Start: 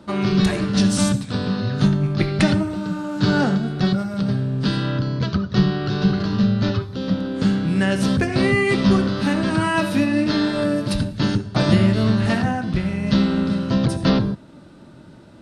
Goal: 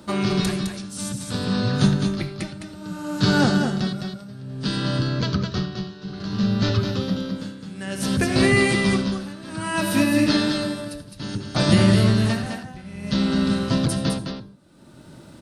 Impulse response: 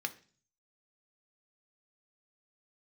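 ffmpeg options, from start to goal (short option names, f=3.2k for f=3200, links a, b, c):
-af "aemphasis=mode=production:type=50fm,tremolo=f=0.59:d=0.9,aecho=1:1:210:0.531"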